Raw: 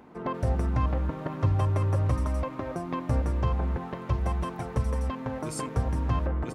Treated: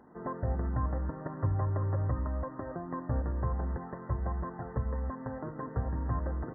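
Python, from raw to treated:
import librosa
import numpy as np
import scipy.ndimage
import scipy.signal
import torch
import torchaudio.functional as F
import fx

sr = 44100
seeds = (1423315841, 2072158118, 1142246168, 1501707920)

y = fx.brickwall_lowpass(x, sr, high_hz=2000.0)
y = F.gain(torch.from_numpy(y), -5.5).numpy()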